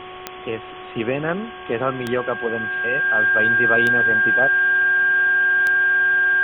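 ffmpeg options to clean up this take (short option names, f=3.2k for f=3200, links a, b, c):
-af "adeclick=t=4,bandreject=f=368.5:t=h:w=4,bandreject=f=737:t=h:w=4,bandreject=f=1.1055k:t=h:w=4,bandreject=f=1.6k:w=30,afwtdn=0.022"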